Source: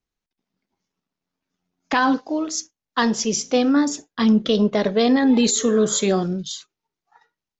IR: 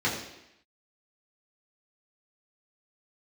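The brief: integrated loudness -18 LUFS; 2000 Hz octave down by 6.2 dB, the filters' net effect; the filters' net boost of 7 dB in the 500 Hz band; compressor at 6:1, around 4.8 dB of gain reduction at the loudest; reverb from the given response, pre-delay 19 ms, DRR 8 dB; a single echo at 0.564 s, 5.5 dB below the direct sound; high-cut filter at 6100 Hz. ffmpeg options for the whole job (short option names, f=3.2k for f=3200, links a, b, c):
-filter_complex "[0:a]lowpass=6.1k,equalizer=f=500:t=o:g=8.5,equalizer=f=2k:t=o:g=-9,acompressor=threshold=-13dB:ratio=6,aecho=1:1:564:0.531,asplit=2[a][b];[1:a]atrim=start_sample=2205,adelay=19[c];[b][c]afir=irnorm=-1:irlink=0,volume=-20dB[d];[a][d]amix=inputs=2:normalize=0"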